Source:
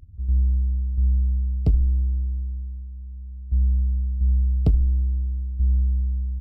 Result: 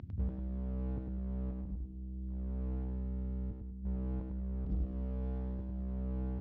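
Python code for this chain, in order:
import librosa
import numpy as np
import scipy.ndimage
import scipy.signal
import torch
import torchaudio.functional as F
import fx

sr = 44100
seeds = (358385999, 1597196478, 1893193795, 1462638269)

y = scipy.signal.sosfilt(scipy.signal.cheby1(2, 1.0, 180.0, 'highpass', fs=sr, output='sos'), x)
y = fx.low_shelf(y, sr, hz=340.0, db=8.0, at=(1.51, 3.83), fade=0.02)
y = fx.over_compress(y, sr, threshold_db=-41.0, ratio=-1.0)
y = fx.clip_asym(y, sr, top_db=-36.5, bottom_db=-34.0)
y = fx.air_absorb(y, sr, metres=220.0)
y = fx.echo_feedback(y, sr, ms=101, feedback_pct=37, wet_db=-3.5)
y = y * 10.0 ** (7.5 / 20.0)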